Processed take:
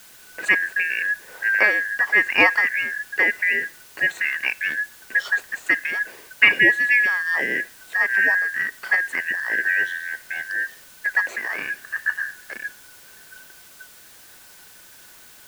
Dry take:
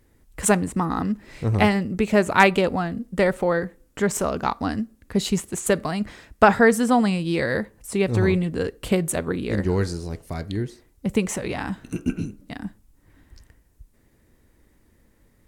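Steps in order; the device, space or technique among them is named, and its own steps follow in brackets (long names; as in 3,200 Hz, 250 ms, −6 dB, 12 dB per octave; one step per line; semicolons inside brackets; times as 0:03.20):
split-band scrambled radio (band-splitting scrambler in four parts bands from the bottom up 2143; band-pass filter 320–3,100 Hz; white noise bed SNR 24 dB)
level +1 dB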